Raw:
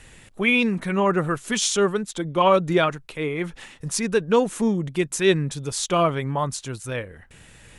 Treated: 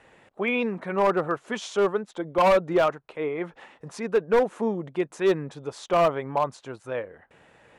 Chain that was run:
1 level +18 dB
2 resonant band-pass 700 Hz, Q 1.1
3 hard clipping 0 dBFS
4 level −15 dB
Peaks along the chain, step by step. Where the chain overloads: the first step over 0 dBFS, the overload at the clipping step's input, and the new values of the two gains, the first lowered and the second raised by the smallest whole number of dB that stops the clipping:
+11.5, +9.5, 0.0, −15.0 dBFS
step 1, 9.5 dB
step 1 +8 dB, step 4 −5 dB

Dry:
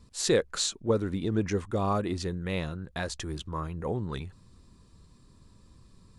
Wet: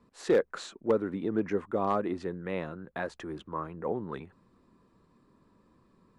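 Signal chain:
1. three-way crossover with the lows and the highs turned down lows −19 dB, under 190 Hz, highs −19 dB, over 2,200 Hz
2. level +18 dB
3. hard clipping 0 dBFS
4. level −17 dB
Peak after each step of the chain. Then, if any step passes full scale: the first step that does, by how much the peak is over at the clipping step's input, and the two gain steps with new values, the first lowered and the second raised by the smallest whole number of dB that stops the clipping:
−13.0, +5.0, 0.0, −17.0 dBFS
step 2, 5.0 dB
step 2 +13 dB, step 4 −12 dB

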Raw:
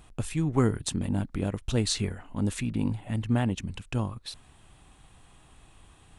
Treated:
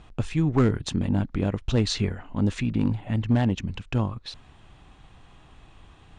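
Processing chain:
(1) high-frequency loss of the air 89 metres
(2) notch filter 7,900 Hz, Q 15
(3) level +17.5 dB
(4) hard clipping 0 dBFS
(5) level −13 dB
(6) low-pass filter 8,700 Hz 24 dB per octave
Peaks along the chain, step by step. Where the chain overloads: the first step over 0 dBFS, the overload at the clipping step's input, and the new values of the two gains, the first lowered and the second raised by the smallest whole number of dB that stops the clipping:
−11.0, −11.0, +6.5, 0.0, −13.0, −13.0 dBFS
step 3, 6.5 dB
step 3 +10.5 dB, step 5 −6 dB

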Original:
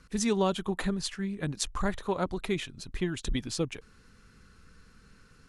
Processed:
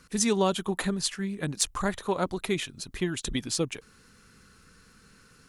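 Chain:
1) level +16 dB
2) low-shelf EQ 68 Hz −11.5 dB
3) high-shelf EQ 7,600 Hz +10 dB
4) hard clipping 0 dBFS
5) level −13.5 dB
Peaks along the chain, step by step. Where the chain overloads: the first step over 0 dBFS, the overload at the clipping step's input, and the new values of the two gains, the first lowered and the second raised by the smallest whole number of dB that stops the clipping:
+4.0, +4.0, +7.0, 0.0, −13.5 dBFS
step 1, 7.0 dB
step 1 +9 dB, step 5 −6.5 dB

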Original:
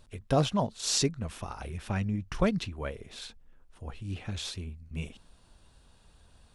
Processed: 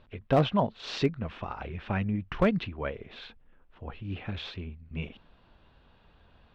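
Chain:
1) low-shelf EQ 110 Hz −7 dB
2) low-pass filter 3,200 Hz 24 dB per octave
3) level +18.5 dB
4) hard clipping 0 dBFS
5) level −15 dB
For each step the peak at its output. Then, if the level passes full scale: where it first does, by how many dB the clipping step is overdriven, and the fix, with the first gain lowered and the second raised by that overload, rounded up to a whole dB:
−10.5, −14.5, +4.0, 0.0, −15.0 dBFS
step 3, 4.0 dB
step 3 +14.5 dB, step 5 −11 dB

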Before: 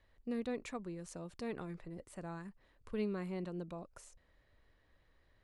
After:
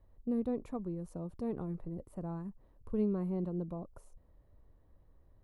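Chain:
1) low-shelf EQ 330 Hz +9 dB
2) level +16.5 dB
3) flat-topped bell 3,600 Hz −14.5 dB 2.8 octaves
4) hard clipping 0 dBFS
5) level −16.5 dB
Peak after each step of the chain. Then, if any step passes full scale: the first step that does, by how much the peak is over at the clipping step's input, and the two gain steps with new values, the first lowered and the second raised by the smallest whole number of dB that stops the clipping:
−22.0, −5.5, −6.0, −6.0, −22.5 dBFS
no step passes full scale

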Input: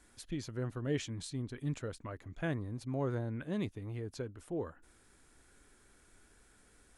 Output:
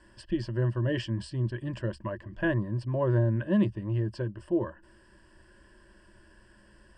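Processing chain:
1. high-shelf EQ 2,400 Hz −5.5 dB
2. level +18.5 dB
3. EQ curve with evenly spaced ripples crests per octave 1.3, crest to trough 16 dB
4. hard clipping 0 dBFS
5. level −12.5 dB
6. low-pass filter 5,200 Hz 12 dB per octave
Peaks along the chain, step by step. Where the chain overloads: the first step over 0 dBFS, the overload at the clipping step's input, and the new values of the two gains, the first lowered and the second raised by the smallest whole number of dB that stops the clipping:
−22.5, −4.0, −2.0, −2.0, −14.5, −14.5 dBFS
no step passes full scale

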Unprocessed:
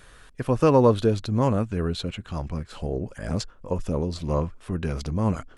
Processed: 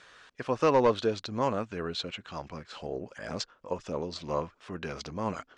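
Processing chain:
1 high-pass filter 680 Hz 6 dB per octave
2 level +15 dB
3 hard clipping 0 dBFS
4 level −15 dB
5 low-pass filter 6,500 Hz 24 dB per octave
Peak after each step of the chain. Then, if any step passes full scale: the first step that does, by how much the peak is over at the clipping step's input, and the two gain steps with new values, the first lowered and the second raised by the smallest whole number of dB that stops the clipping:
−10.0, +5.0, 0.0, −15.0, −14.5 dBFS
step 2, 5.0 dB
step 2 +10 dB, step 4 −10 dB

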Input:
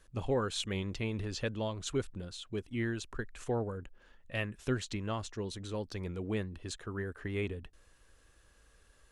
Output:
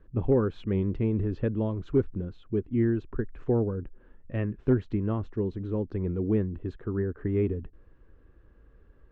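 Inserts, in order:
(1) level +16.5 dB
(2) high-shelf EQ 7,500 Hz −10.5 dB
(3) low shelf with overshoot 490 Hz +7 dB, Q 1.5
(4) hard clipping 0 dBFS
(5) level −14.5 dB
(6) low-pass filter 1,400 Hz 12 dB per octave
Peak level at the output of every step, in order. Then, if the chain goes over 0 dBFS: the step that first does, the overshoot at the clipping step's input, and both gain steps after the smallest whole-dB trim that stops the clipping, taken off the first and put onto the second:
−4.0, −4.5, +3.0, 0.0, −14.5, −14.0 dBFS
step 3, 3.0 dB
step 1 +13.5 dB, step 5 −11.5 dB

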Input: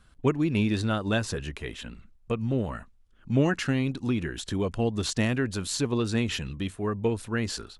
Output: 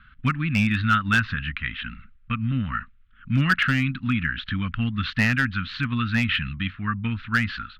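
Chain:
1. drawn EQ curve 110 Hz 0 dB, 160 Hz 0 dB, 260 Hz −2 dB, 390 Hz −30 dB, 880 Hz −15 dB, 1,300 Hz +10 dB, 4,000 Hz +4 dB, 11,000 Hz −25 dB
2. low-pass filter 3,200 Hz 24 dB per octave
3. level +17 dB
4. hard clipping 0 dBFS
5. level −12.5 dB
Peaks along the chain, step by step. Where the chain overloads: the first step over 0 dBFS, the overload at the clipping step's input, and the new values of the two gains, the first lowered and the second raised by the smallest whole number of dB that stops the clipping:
−8.5, −9.0, +8.0, 0.0, −12.5 dBFS
step 3, 8.0 dB
step 3 +9 dB, step 5 −4.5 dB

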